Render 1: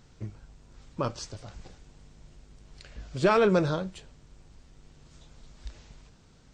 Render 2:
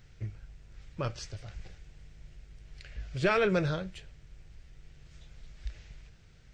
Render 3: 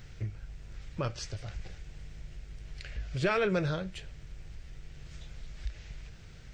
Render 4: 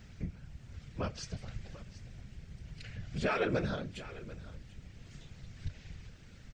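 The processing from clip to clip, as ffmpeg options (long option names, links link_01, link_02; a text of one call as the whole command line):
ffmpeg -i in.wav -af "equalizer=frequency=250:width_type=o:width=1:gain=-12,equalizer=frequency=500:width_type=o:width=1:gain=-3,equalizer=frequency=1000:width_type=o:width=1:gain=-12,equalizer=frequency=2000:width_type=o:width=1:gain=4,equalizer=frequency=4000:width_type=o:width=1:gain=-4,equalizer=frequency=8000:width_type=o:width=1:gain=-9,volume=3dB" out.wav
ffmpeg -i in.wav -af "acompressor=threshold=-51dB:ratio=1.5,volume=8dB" out.wav
ffmpeg -i in.wav -af "aecho=1:1:742:0.15,afftfilt=real='hypot(re,im)*cos(2*PI*random(0))':imag='hypot(re,im)*sin(2*PI*random(1))':win_size=512:overlap=0.75,volume=2.5dB" out.wav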